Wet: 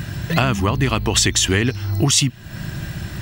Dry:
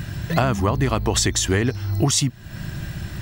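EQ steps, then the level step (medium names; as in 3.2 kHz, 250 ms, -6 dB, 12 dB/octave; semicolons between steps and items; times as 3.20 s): bass shelf 68 Hz -5.5 dB; dynamic bell 2.8 kHz, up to +7 dB, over -43 dBFS, Q 2.3; dynamic bell 620 Hz, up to -5 dB, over -32 dBFS, Q 0.95; +3.5 dB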